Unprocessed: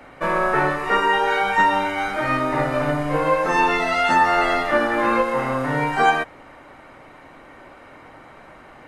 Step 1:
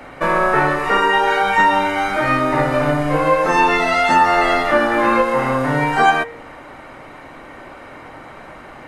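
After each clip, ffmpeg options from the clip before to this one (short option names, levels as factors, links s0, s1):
-filter_complex "[0:a]bandreject=f=93.42:t=h:w=4,bandreject=f=186.84:t=h:w=4,bandreject=f=280.26:t=h:w=4,bandreject=f=373.68:t=h:w=4,bandreject=f=467.1:t=h:w=4,bandreject=f=560.52:t=h:w=4,bandreject=f=653.94:t=h:w=4,bandreject=f=747.36:t=h:w=4,bandreject=f=840.78:t=h:w=4,bandreject=f=934.2:t=h:w=4,bandreject=f=1027.62:t=h:w=4,bandreject=f=1121.04:t=h:w=4,bandreject=f=1214.46:t=h:w=4,bandreject=f=1307.88:t=h:w=4,bandreject=f=1401.3:t=h:w=4,bandreject=f=1494.72:t=h:w=4,bandreject=f=1588.14:t=h:w=4,bandreject=f=1681.56:t=h:w=4,bandreject=f=1774.98:t=h:w=4,bandreject=f=1868.4:t=h:w=4,bandreject=f=1961.82:t=h:w=4,bandreject=f=2055.24:t=h:w=4,bandreject=f=2148.66:t=h:w=4,bandreject=f=2242.08:t=h:w=4,bandreject=f=2335.5:t=h:w=4,bandreject=f=2428.92:t=h:w=4,bandreject=f=2522.34:t=h:w=4,bandreject=f=2615.76:t=h:w=4,bandreject=f=2709.18:t=h:w=4,bandreject=f=2802.6:t=h:w=4,bandreject=f=2896.02:t=h:w=4,bandreject=f=2989.44:t=h:w=4,bandreject=f=3082.86:t=h:w=4,bandreject=f=3176.28:t=h:w=4,bandreject=f=3269.7:t=h:w=4,bandreject=f=3363.12:t=h:w=4,bandreject=f=3456.54:t=h:w=4,bandreject=f=3549.96:t=h:w=4,bandreject=f=3643.38:t=h:w=4,bandreject=f=3736.8:t=h:w=4,asplit=2[s0][s1];[s1]acompressor=threshold=0.0501:ratio=6,volume=0.841[s2];[s0][s2]amix=inputs=2:normalize=0,volume=1.26"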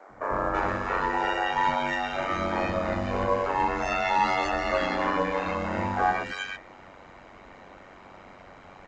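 -filter_complex "[0:a]aeval=exprs='val(0)*sin(2*PI*47*n/s)':c=same,acrossover=split=330|1700[s0][s1][s2];[s0]adelay=90[s3];[s2]adelay=330[s4];[s3][s1][s4]amix=inputs=3:normalize=0,volume=0.473" -ar 16000 -c:a pcm_alaw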